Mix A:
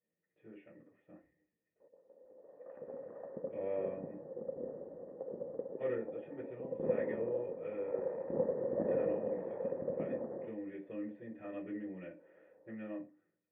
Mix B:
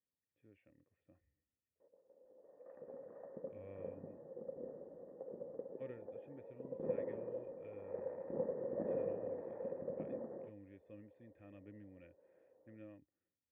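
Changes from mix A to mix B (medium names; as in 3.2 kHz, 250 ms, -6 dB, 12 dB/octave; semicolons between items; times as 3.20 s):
background -5.5 dB; reverb: off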